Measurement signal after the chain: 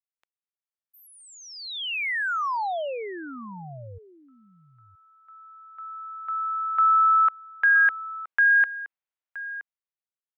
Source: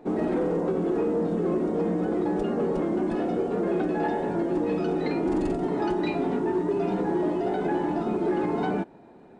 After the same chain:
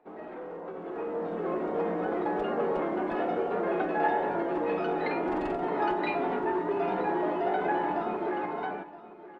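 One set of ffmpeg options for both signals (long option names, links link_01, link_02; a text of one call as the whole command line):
ffmpeg -i in.wav -filter_complex "[0:a]acrossover=split=530 3200:gain=0.178 1 0.0891[link_01][link_02][link_03];[link_01][link_02][link_03]amix=inputs=3:normalize=0,dynaudnorm=framelen=140:gausssize=17:maxgain=13dB,aecho=1:1:971:0.15,volume=-8.5dB" out.wav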